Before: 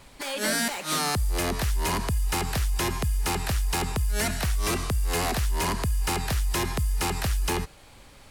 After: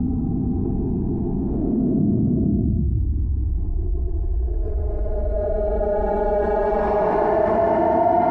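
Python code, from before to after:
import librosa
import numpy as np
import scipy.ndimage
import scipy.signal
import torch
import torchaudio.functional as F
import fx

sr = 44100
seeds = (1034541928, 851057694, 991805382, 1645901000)

p1 = scipy.signal.sosfilt(scipy.signal.butter(2, 60.0, 'highpass', fs=sr, output='sos'), x)
p2 = fx.small_body(p1, sr, hz=(340.0, 670.0), ring_ms=50, db=17)
p3 = fx.paulstretch(p2, sr, seeds[0], factor=22.0, window_s=0.05, from_s=3.88)
p4 = fx.filter_sweep_lowpass(p3, sr, from_hz=230.0, to_hz=910.0, start_s=2.46, end_s=6.43, q=3.9)
p5 = p4 + fx.echo_single(p4, sr, ms=454, db=-3.0, dry=0)
p6 = fx.env_flatten(p5, sr, amount_pct=70)
y = F.gain(torch.from_numpy(p6), -7.5).numpy()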